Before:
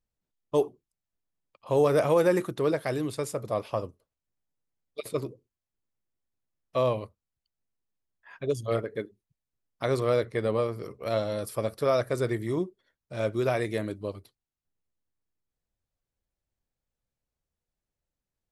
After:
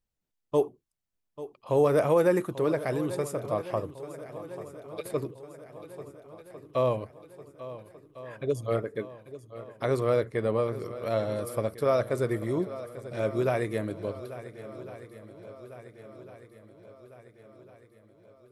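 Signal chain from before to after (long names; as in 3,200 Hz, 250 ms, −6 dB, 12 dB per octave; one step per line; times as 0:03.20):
dynamic equaliser 4,500 Hz, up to −6 dB, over −50 dBFS, Q 0.83
on a send: feedback echo with a long and a short gap by turns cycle 1,402 ms, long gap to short 1.5 to 1, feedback 53%, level −15 dB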